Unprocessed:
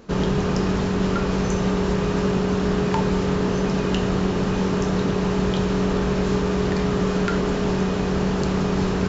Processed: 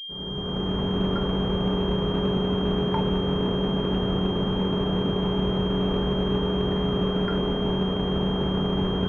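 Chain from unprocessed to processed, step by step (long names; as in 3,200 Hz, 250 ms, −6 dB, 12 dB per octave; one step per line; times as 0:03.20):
fade in at the beginning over 0.89 s
switching amplifier with a slow clock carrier 3,200 Hz
level −3 dB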